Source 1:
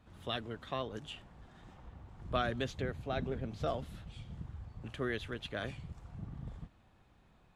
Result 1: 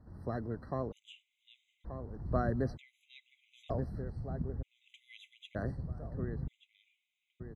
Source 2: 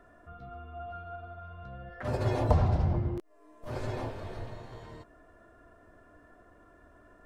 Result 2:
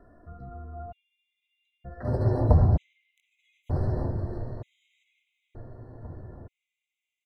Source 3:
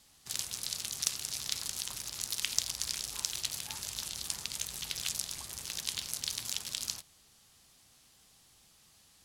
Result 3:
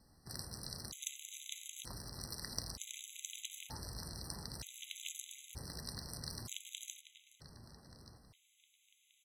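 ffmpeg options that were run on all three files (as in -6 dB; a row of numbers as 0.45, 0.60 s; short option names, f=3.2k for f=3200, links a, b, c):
-filter_complex "[0:a]tiltshelf=f=810:g=7.5,asplit=2[a][b];[b]adelay=1180,lowpass=f=2.5k:p=1,volume=-9dB,asplit=2[c][d];[d]adelay=1180,lowpass=f=2.5k:p=1,volume=0.41,asplit=2[e][f];[f]adelay=1180,lowpass=f=2.5k:p=1,volume=0.41,asplit=2[g][h];[h]adelay=1180,lowpass=f=2.5k:p=1,volume=0.41,asplit=2[i][j];[j]adelay=1180,lowpass=f=2.5k:p=1,volume=0.41[k];[a][c][e][g][i][k]amix=inputs=6:normalize=0,afftfilt=real='re*gt(sin(2*PI*0.54*pts/sr)*(1-2*mod(floor(b*sr/1024/2000),2)),0)':imag='im*gt(sin(2*PI*0.54*pts/sr)*(1-2*mod(floor(b*sr/1024/2000),2)),0)':win_size=1024:overlap=0.75,volume=-1dB"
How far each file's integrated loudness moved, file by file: +1.0, +6.5, -10.5 LU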